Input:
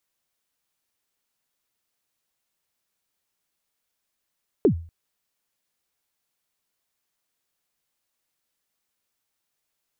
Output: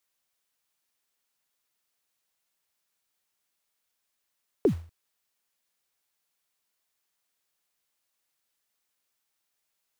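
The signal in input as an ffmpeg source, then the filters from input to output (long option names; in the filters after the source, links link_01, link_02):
-f lavfi -i "aevalsrc='0.299*pow(10,-3*t/0.41)*sin(2*PI*(470*0.093/log(83/470)*(exp(log(83/470)*min(t,0.093)/0.093)-1)+83*max(t-0.093,0)))':duration=0.24:sample_rate=44100"
-filter_complex "[0:a]lowshelf=frequency=440:gain=-6,acrossover=split=220|570[link_01][link_02][link_03];[link_01]acrusher=bits=4:mode=log:mix=0:aa=0.000001[link_04];[link_04][link_02][link_03]amix=inputs=3:normalize=0"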